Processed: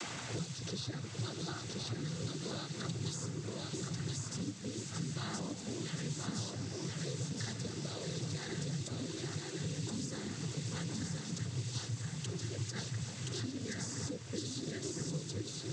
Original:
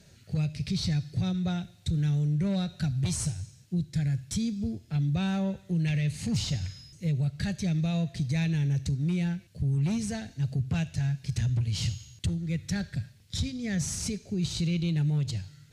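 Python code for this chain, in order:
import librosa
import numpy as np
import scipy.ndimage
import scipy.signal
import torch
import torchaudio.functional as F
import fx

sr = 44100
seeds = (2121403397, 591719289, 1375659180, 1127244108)

y = fx.fixed_phaser(x, sr, hz=650.0, stages=6)
y = fx.echo_alternate(y, sr, ms=314, hz=1100.0, feedback_pct=77, wet_db=-9)
y = fx.dmg_noise_colour(y, sr, seeds[0], colour='white', level_db=-50.0)
y = fx.noise_vocoder(y, sr, seeds[1], bands=16)
y = y + 10.0 ** (-3.5 / 20.0) * np.pad(y, (int(1024 * sr / 1000.0), 0))[:len(y)]
y = fx.band_squash(y, sr, depth_pct=100)
y = F.gain(torch.from_numpy(y), -3.0).numpy()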